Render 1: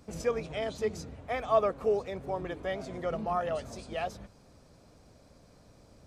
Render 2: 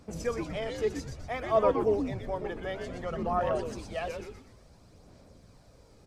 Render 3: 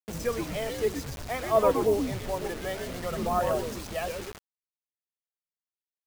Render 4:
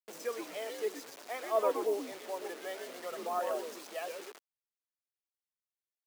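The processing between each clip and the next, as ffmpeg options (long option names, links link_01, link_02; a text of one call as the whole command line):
ffmpeg -i in.wav -filter_complex "[0:a]asplit=7[link_01][link_02][link_03][link_04][link_05][link_06][link_07];[link_02]adelay=122,afreqshift=-150,volume=-5dB[link_08];[link_03]adelay=244,afreqshift=-300,volume=-11.9dB[link_09];[link_04]adelay=366,afreqshift=-450,volume=-18.9dB[link_10];[link_05]adelay=488,afreqshift=-600,volume=-25.8dB[link_11];[link_06]adelay=610,afreqshift=-750,volume=-32.7dB[link_12];[link_07]adelay=732,afreqshift=-900,volume=-39.7dB[link_13];[link_01][link_08][link_09][link_10][link_11][link_12][link_13]amix=inputs=7:normalize=0,aphaser=in_gain=1:out_gain=1:delay=2.4:decay=0.33:speed=0.58:type=sinusoidal,volume=-1.5dB" out.wav
ffmpeg -i in.wav -af "acrusher=bits=6:mix=0:aa=0.000001,volume=2dB" out.wav
ffmpeg -i in.wav -af "highpass=frequency=320:width=0.5412,highpass=frequency=320:width=1.3066,volume=-7dB" out.wav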